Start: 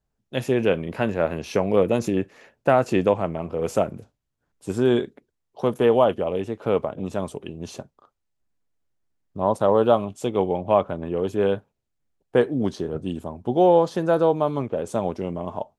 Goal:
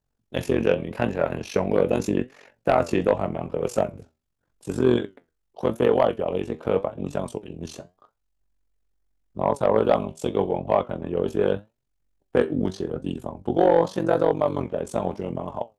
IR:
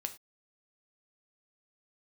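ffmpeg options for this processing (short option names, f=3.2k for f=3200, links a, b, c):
-af "tremolo=f=46:d=0.947,flanger=delay=6.7:depth=6.3:regen=73:speed=0.84:shape=triangular,aeval=exprs='0.376*sin(PI/2*1.58*val(0)/0.376)':c=same"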